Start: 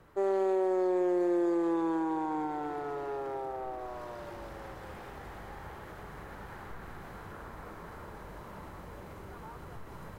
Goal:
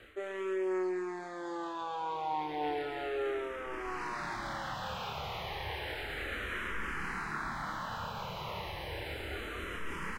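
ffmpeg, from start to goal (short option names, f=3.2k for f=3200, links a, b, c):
-filter_complex "[0:a]equalizer=f=2.9k:w=0.69:g=14.5,areverse,acompressor=threshold=-36dB:ratio=6,areverse,asplit=2[a][b];[b]adelay=27,volume=-2.5dB[c];[a][c]amix=inputs=2:normalize=0,asplit=2[d][e];[e]afreqshift=-0.32[f];[d][f]amix=inputs=2:normalize=1,volume=4.5dB"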